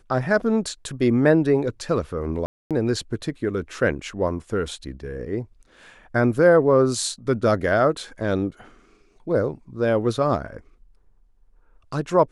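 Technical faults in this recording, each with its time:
2.46–2.71 s: dropout 247 ms

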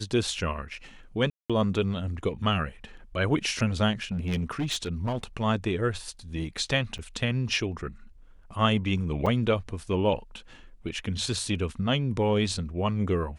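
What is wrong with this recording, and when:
1.30–1.50 s: dropout 196 ms
4.02–5.24 s: clipped -24 dBFS
6.98–6.99 s: dropout 7.8 ms
9.26–9.27 s: dropout 5 ms

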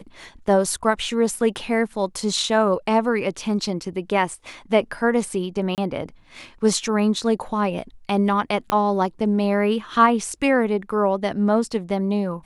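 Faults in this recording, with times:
5.75–5.78 s: dropout 28 ms
8.70 s: pop -7 dBFS

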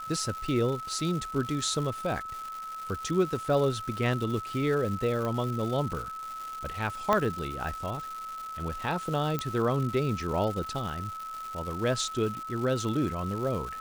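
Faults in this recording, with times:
crackle 350 per s -35 dBFS
whine 1.3 kHz -36 dBFS
5.25 s: pop -20 dBFS
7.13 s: pop -12 dBFS
9.39 s: pop -15 dBFS

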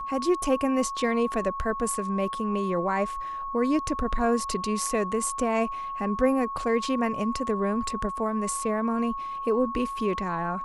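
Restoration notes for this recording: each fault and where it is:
whine 1.1 kHz -31 dBFS

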